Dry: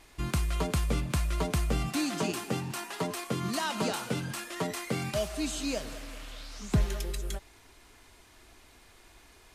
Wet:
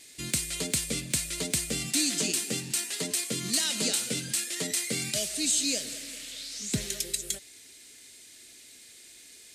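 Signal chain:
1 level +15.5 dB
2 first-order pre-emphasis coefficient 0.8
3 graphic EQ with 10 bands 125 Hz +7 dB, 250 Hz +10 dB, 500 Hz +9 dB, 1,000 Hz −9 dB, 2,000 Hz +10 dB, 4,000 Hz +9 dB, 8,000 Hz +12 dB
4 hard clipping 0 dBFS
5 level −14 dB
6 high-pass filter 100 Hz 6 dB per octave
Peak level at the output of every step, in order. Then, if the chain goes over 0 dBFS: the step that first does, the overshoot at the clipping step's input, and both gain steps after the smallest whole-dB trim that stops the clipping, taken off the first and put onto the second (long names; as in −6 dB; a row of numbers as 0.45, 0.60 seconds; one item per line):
−1.5, −4.5, +6.5, 0.0, −14.0, −13.5 dBFS
step 3, 6.5 dB
step 1 +8.5 dB, step 5 −7 dB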